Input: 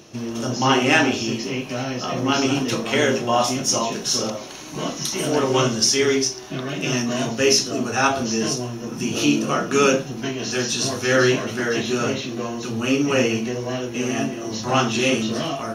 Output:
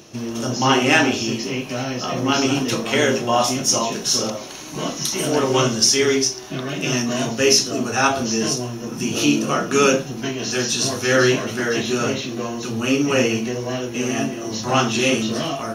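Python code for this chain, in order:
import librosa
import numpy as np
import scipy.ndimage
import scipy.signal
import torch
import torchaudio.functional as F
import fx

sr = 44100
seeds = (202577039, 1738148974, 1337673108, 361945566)

y = fx.high_shelf(x, sr, hz=7400.0, db=4.5)
y = y * 10.0 ** (1.0 / 20.0)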